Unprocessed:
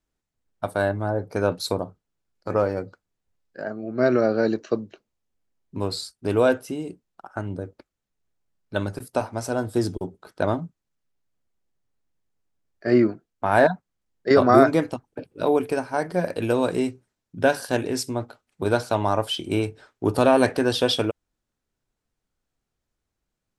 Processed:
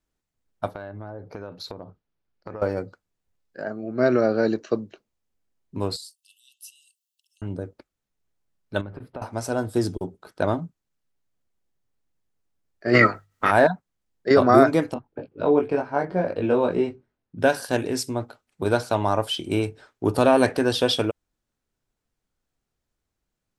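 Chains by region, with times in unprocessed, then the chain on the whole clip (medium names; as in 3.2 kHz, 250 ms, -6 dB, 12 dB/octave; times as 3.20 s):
0.68–2.62 s: boxcar filter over 5 samples + compression 8:1, threshold -32 dBFS
5.96–7.42 s: treble shelf 8.6 kHz +11 dB + compression 3:1, threshold -39 dBFS + brick-wall FIR high-pass 2.6 kHz
8.81–9.22 s: companding laws mixed up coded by mu + compression 3:1, threshold -33 dBFS + distance through air 440 m
12.93–13.50 s: spectral peaks clipped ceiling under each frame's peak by 23 dB + hum notches 50/100/150 Hz + small resonant body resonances 1.3/1.9 kHz, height 16 dB
14.94–17.39 s: low-pass 4.1 kHz + treble shelf 2.3 kHz -9 dB + doubling 21 ms -3 dB
whole clip: none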